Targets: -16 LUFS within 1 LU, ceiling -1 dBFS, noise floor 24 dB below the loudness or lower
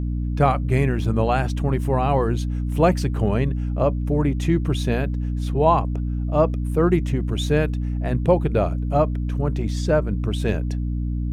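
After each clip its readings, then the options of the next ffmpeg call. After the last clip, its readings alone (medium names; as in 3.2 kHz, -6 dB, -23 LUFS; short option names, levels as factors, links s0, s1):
hum 60 Hz; highest harmonic 300 Hz; hum level -22 dBFS; loudness -22.0 LUFS; peak level -4.5 dBFS; loudness target -16.0 LUFS
-> -af "bandreject=f=60:t=h:w=6,bandreject=f=120:t=h:w=6,bandreject=f=180:t=h:w=6,bandreject=f=240:t=h:w=6,bandreject=f=300:t=h:w=6"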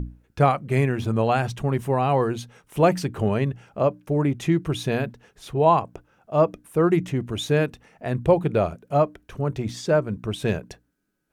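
hum not found; loudness -23.5 LUFS; peak level -5.5 dBFS; loudness target -16.0 LUFS
-> -af "volume=2.37,alimiter=limit=0.891:level=0:latency=1"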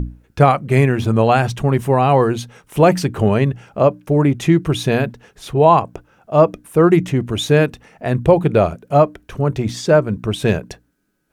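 loudness -16.5 LUFS; peak level -1.0 dBFS; noise floor -60 dBFS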